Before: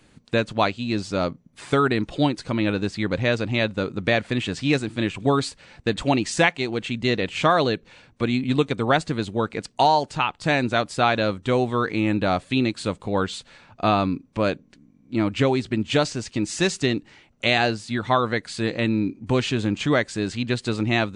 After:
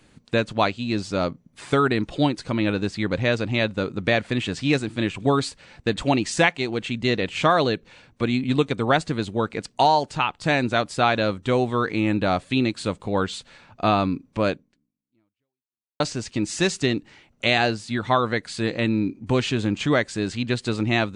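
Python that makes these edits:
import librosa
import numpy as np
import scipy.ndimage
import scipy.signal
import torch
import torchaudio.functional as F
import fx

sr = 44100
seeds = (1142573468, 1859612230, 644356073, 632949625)

y = fx.edit(x, sr, fx.fade_out_span(start_s=14.51, length_s=1.49, curve='exp'), tone=tone)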